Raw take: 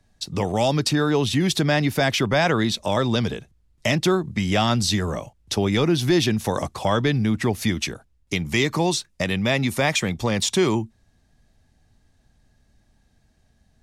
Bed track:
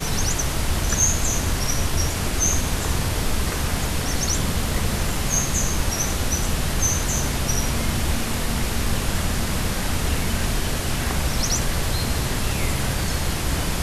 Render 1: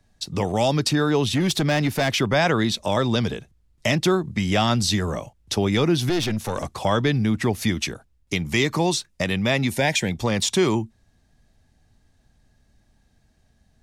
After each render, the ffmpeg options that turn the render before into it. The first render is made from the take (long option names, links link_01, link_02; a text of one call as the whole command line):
ffmpeg -i in.wav -filter_complex "[0:a]asettb=1/sr,asplit=3[link_01][link_02][link_03];[link_01]atrim=end=1.354[link_04];[link_02]atrim=start=1.35:end=2.13,asetpts=PTS-STARTPTS,afade=type=in:duration=0.004:curve=qsin,afade=type=out:start_time=0.776:duration=0.004:curve=qsin,asoftclip=type=hard:threshold=-16dB[link_05];[link_03]atrim=start=2.126[link_06];[link_04][link_05]acrossfade=duration=0.004:curve1=hsin:curve2=qsin[link_07];[link_07][link_06]acrossfade=duration=0.004:curve1=qsin:curve2=hsin,asettb=1/sr,asplit=3[link_08][link_09][link_10];[link_08]atrim=end=6.094[link_11];[link_09]atrim=start=6.09:end=6.68,asetpts=PTS-STARTPTS,afade=type=in:duration=0.004:curve=qsin,afade=type=out:start_time=0.586:duration=0.004:curve=qsin,aeval=exprs='(tanh(7.94*val(0)+0.45)-tanh(0.45))/7.94':channel_layout=same[link_12];[link_10]atrim=start=6.676[link_13];[link_11][link_12]acrossfade=duration=0.004:curve1=hsin:curve2=qsin[link_14];[link_14][link_13]acrossfade=duration=0.004:curve1=qsin:curve2=hsin,asettb=1/sr,asplit=3[link_15][link_16][link_17];[link_15]atrim=end=9.714[link_18];[link_16]atrim=start=9.71:end=10.12,asetpts=PTS-STARTPTS,afade=type=in:duration=0.004:curve=qsin,afade=type=out:start_time=0.406:duration=0.004:curve=qsin,asuperstop=centerf=1200:order=4:qfactor=2.7[link_19];[link_17]atrim=start=10.116[link_20];[link_18][link_19]acrossfade=duration=0.004:curve1=hsin:curve2=qsin[link_21];[link_21][link_20]acrossfade=duration=0.004:curve1=qsin:curve2=hsin" out.wav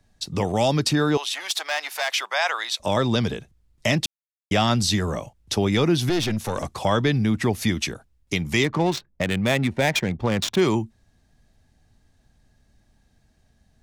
ffmpeg -i in.wav -filter_complex "[0:a]asettb=1/sr,asplit=3[link_01][link_02][link_03];[link_01]atrim=end=1.174[link_04];[link_02]atrim=start=1.17:end=2.8,asetpts=PTS-STARTPTS,afade=type=in:duration=0.004:curve=qsin,afade=type=out:start_time=1.626:duration=0.004:curve=qsin,highpass=frequency=730:width=0.5412,highpass=frequency=730:width=1.3066[link_05];[link_03]atrim=start=2.796[link_06];[link_04][link_05]acrossfade=duration=0.004:curve1=hsin:curve2=qsin[link_07];[link_07][link_06]acrossfade=duration=0.004:curve1=qsin:curve2=hsin,asplit=3[link_08][link_09][link_10];[link_08]afade=type=out:start_time=8.63:duration=0.02[link_11];[link_09]adynamicsmooth=sensitivity=2.5:basefreq=930,afade=type=in:start_time=8.63:duration=0.02,afade=type=out:start_time=10.6:duration=0.02[link_12];[link_10]afade=type=in:start_time=10.6:duration=0.02[link_13];[link_11][link_12][link_13]amix=inputs=3:normalize=0,asplit=3[link_14][link_15][link_16];[link_14]atrim=end=4.06,asetpts=PTS-STARTPTS,afade=type=out:start_time=4.056:duration=0.004:curve=hsin[link_17];[link_15]atrim=start=4.06:end=4.51,asetpts=PTS-STARTPTS,volume=0[link_18];[link_16]atrim=start=4.51,asetpts=PTS-STARTPTS,afade=type=in:duration=0.004:curve=hsin[link_19];[link_17][link_18][link_19]concat=n=3:v=0:a=1" out.wav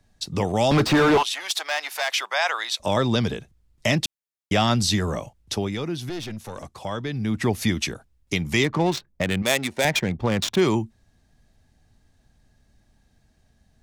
ffmpeg -i in.wav -filter_complex "[0:a]asettb=1/sr,asplit=3[link_01][link_02][link_03];[link_01]atrim=end=0.714[link_04];[link_02]atrim=start=0.71:end=1.23,asetpts=PTS-STARTPTS,afade=type=in:duration=0.004:curve=qsin,afade=type=out:start_time=0.516:duration=0.004:curve=qsin,asplit=2[link_05][link_06];[link_06]highpass=frequency=720:poles=1,volume=31dB,asoftclip=type=tanh:threshold=-9.5dB[link_07];[link_05][link_07]amix=inputs=2:normalize=0,lowpass=frequency=1300:poles=1,volume=-6dB[link_08];[link_03]atrim=start=1.226[link_09];[link_04][link_08]acrossfade=duration=0.004:curve1=hsin:curve2=qsin[link_10];[link_10][link_09]acrossfade=duration=0.004:curve1=qsin:curve2=hsin,asettb=1/sr,asplit=3[link_11][link_12][link_13];[link_11]atrim=end=9.424[link_14];[link_12]atrim=start=9.42:end=9.85,asetpts=PTS-STARTPTS,afade=type=in:duration=0.004:curve=qsin,afade=type=out:start_time=0.426:duration=0.004:curve=qsin,bass=frequency=250:gain=-13,treble=frequency=4000:gain=10[link_15];[link_13]atrim=start=9.846[link_16];[link_14][link_15]acrossfade=duration=0.004:curve1=hsin:curve2=qsin[link_17];[link_17][link_16]acrossfade=duration=0.004:curve1=qsin:curve2=hsin,asplit=3[link_18][link_19][link_20];[link_18]atrim=end=5.77,asetpts=PTS-STARTPTS,afade=type=out:start_time=5.38:duration=0.39:silence=0.354813[link_21];[link_19]atrim=start=5.77:end=7.1,asetpts=PTS-STARTPTS,volume=-9dB[link_22];[link_20]atrim=start=7.1,asetpts=PTS-STARTPTS,afade=type=in:duration=0.39:silence=0.354813[link_23];[link_21][link_22][link_23]concat=n=3:v=0:a=1" out.wav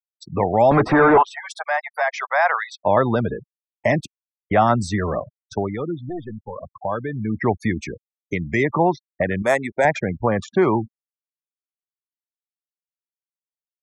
ffmpeg -i in.wav -af "afftfilt=real='re*gte(hypot(re,im),0.0501)':imag='im*gte(hypot(re,im),0.0501)':win_size=1024:overlap=0.75,firequalizer=gain_entry='entry(190,0);entry(690,8);entry(2000,3);entry(2900,-15);entry(8200,-5);entry(16000,-9)':delay=0.05:min_phase=1" out.wav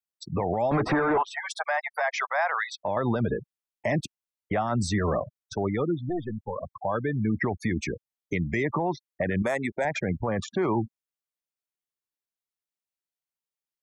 ffmpeg -i in.wav -af "acompressor=threshold=-17dB:ratio=6,alimiter=limit=-17.5dB:level=0:latency=1:release=25" out.wav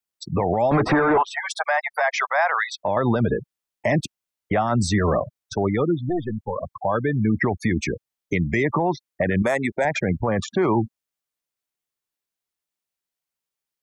ffmpeg -i in.wav -af "volume=5.5dB" out.wav